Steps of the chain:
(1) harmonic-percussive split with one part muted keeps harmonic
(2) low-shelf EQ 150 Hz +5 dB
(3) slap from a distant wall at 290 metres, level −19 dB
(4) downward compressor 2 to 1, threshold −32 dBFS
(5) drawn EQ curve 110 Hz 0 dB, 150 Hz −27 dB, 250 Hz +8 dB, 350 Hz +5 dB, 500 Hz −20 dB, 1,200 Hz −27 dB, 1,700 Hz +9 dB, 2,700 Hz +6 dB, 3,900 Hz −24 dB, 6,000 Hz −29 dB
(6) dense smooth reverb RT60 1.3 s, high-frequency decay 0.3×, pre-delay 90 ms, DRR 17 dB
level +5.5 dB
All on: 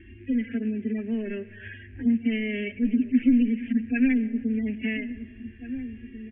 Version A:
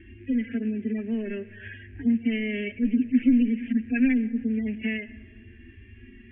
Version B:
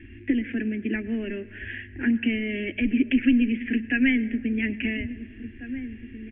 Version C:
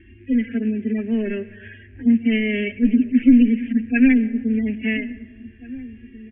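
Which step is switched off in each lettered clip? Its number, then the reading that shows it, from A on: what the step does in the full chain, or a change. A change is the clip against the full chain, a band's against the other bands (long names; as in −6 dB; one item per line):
3, change in momentary loudness spread −4 LU
1, 2 kHz band +6.0 dB
4, average gain reduction 3.5 dB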